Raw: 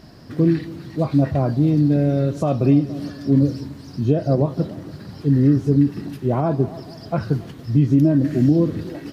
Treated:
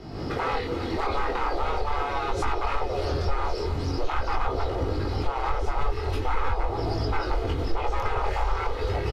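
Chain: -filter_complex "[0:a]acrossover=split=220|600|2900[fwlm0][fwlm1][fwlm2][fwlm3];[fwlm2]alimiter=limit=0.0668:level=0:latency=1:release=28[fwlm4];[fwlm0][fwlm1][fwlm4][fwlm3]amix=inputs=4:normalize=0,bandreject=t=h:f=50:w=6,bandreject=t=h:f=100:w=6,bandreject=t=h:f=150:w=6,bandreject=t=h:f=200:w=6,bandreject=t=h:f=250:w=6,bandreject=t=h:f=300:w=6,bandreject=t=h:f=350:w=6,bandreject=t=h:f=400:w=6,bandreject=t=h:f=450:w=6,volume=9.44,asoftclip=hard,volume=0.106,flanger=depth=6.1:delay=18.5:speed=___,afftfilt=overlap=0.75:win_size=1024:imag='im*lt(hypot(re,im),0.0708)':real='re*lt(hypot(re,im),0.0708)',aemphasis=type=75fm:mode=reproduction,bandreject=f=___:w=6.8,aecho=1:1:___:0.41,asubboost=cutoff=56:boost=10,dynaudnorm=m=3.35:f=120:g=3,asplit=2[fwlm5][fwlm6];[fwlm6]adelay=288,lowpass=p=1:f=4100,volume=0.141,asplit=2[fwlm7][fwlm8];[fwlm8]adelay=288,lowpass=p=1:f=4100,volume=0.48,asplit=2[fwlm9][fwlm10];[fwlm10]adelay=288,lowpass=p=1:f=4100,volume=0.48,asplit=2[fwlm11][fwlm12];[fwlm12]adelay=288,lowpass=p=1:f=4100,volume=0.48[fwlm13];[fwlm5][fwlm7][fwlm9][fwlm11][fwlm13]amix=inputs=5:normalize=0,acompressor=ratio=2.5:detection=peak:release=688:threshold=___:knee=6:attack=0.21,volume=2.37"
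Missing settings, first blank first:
0.43, 1700, 2.4, 0.0447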